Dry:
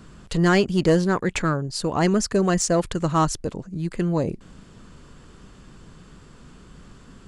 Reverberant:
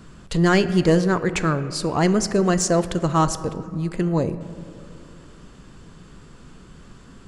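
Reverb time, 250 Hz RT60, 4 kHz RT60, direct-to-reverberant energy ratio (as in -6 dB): 2.6 s, 3.0 s, 1.4 s, 11.5 dB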